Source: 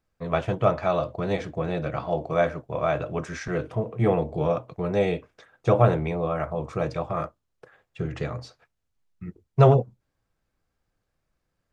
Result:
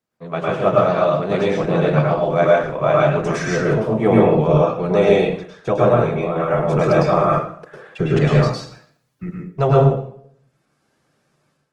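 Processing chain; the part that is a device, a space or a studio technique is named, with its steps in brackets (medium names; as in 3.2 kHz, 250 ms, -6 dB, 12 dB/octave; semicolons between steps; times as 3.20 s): far-field microphone of a smart speaker (reverberation RT60 0.55 s, pre-delay 100 ms, DRR -3.5 dB; high-pass 140 Hz 24 dB/octave; level rider gain up to 12.5 dB; trim -1 dB; Opus 20 kbps 48 kHz)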